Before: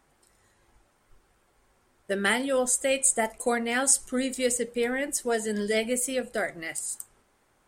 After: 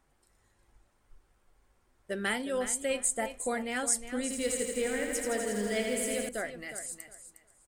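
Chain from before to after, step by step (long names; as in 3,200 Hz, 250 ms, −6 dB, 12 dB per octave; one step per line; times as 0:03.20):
low-shelf EQ 76 Hz +10 dB
repeating echo 360 ms, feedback 21%, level −11 dB
0:04.22–0:06.29: feedback echo at a low word length 82 ms, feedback 80%, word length 8 bits, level −4.5 dB
level −7 dB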